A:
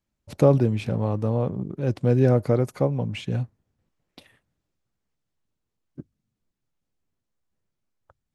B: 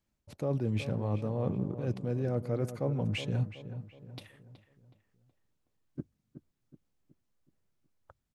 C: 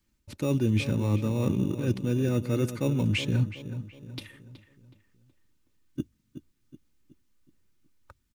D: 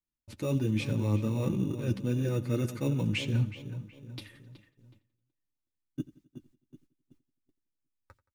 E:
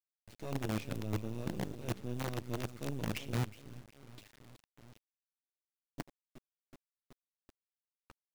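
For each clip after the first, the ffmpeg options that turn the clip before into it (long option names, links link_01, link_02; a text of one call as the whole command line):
ffmpeg -i in.wav -filter_complex "[0:a]areverse,acompressor=threshold=-27dB:ratio=16,areverse,asplit=2[link_01][link_02];[link_02]adelay=372,lowpass=frequency=2100:poles=1,volume=-11dB,asplit=2[link_03][link_04];[link_04]adelay=372,lowpass=frequency=2100:poles=1,volume=0.45,asplit=2[link_05][link_06];[link_06]adelay=372,lowpass=frequency=2100:poles=1,volume=0.45,asplit=2[link_07][link_08];[link_08]adelay=372,lowpass=frequency=2100:poles=1,volume=0.45,asplit=2[link_09][link_10];[link_10]adelay=372,lowpass=frequency=2100:poles=1,volume=0.45[link_11];[link_01][link_03][link_05][link_07][link_09][link_11]amix=inputs=6:normalize=0" out.wav
ffmpeg -i in.wav -filter_complex "[0:a]equalizer=frequency=670:width_type=o:width=0.61:gain=-13,aecho=1:1:3.3:0.35,acrossover=split=370|860[link_01][link_02][link_03];[link_02]acrusher=samples=14:mix=1:aa=0.000001[link_04];[link_01][link_04][link_03]amix=inputs=3:normalize=0,volume=8dB" out.wav
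ffmpeg -i in.wav -af "agate=range=-19dB:threshold=-57dB:ratio=16:detection=peak,flanger=delay=5.8:depth=3.6:regen=-29:speed=1.3:shape=sinusoidal,aecho=1:1:87|174|261|348:0.112|0.055|0.0269|0.0132" out.wav
ffmpeg -i in.wav -af "lowpass=6600,acompressor=mode=upward:threshold=-40dB:ratio=2.5,acrusher=bits=5:dc=4:mix=0:aa=0.000001,volume=-8dB" out.wav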